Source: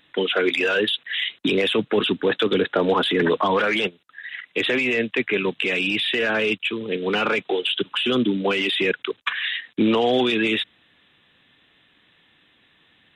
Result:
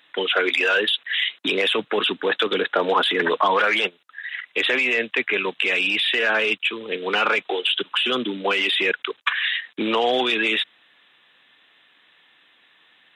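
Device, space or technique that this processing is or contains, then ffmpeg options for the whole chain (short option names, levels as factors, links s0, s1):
filter by subtraction: -filter_complex "[0:a]asplit=2[s0][s1];[s1]lowpass=1000,volume=-1[s2];[s0][s2]amix=inputs=2:normalize=0,volume=1.19"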